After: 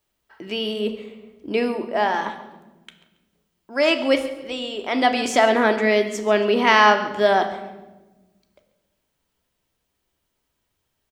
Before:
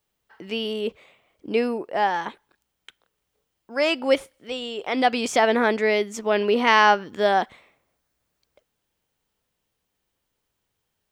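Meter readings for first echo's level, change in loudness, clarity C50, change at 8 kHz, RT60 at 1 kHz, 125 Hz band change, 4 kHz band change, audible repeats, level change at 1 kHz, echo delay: -16.5 dB, +2.0 dB, 10.0 dB, +2.0 dB, 0.95 s, n/a, +2.5 dB, 2, +1.5 dB, 0.139 s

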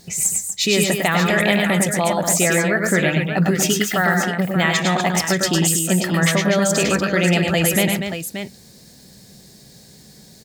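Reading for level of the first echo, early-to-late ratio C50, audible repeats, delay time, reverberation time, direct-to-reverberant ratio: -4.5 dB, none, 3, 0.102 s, none, none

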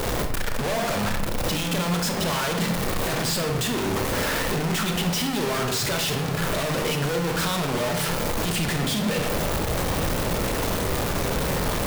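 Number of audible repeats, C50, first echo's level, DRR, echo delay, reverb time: none, 6.5 dB, none, 4.0 dB, none, 0.90 s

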